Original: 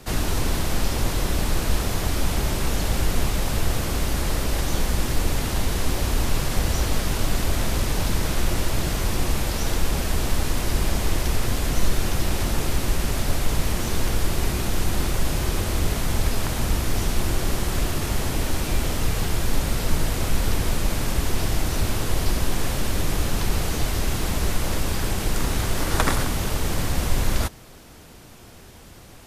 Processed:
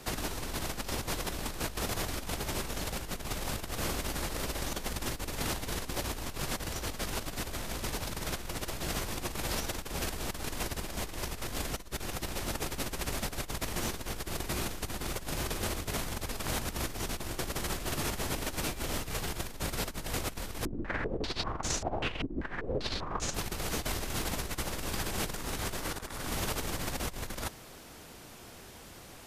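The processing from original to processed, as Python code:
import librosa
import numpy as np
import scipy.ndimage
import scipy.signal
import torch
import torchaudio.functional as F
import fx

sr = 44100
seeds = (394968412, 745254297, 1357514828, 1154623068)

y = fx.low_shelf(x, sr, hz=190.0, db=-7.5)
y = fx.over_compress(y, sr, threshold_db=-29.0, ratio=-0.5)
y = fx.filter_held_lowpass(y, sr, hz=5.1, low_hz=300.0, high_hz=6700.0, at=(20.65, 23.34))
y = F.gain(torch.from_numpy(y), -5.5).numpy()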